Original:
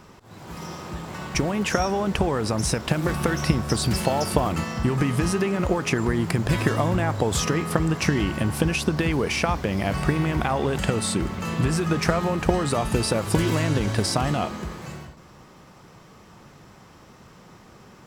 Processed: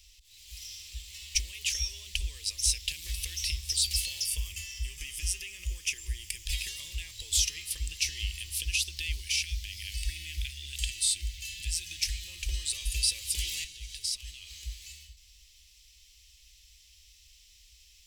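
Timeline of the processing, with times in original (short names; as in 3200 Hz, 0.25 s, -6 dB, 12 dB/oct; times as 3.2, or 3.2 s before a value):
4.26–6.46 bell 4100 Hz -14 dB 0.25 oct
9.2–12.28 elliptic band-stop 340–1500 Hz
13.64–14.62 compressor 5:1, threshold -28 dBFS
whole clip: inverse Chebyshev band-stop 110–1500 Hz, stop band 40 dB; gain +2 dB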